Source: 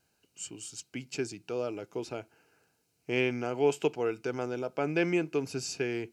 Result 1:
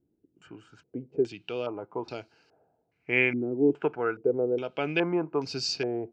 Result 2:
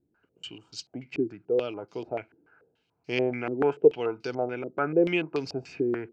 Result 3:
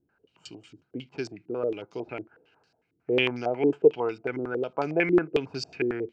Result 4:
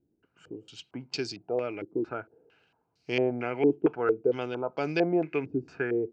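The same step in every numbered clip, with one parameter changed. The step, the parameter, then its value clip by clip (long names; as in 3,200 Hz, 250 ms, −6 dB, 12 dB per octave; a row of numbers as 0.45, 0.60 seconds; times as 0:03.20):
low-pass on a step sequencer, speed: 2.4, 6.9, 11, 4.4 Hertz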